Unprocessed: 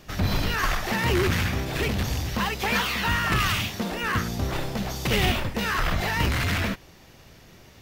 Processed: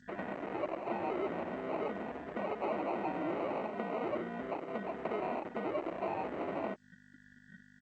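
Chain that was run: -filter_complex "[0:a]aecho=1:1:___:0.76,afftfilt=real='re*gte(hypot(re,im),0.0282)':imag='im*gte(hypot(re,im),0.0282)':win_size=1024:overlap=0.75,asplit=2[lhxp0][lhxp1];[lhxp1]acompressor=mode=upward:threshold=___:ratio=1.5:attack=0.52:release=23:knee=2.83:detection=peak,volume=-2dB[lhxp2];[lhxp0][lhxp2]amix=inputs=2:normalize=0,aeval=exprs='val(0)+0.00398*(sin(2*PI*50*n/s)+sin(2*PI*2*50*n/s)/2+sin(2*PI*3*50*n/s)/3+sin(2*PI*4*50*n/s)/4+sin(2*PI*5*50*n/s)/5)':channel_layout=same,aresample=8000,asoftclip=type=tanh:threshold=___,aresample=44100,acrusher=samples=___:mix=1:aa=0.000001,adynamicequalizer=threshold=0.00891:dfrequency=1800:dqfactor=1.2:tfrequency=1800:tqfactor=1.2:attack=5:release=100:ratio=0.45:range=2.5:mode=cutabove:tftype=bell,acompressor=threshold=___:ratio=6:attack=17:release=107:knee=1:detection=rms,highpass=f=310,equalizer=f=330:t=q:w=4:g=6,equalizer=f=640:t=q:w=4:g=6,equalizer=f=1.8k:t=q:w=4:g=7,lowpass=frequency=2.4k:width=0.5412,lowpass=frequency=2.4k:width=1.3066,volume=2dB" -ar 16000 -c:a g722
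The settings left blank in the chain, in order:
4.4, -35dB, -17dB, 26, -37dB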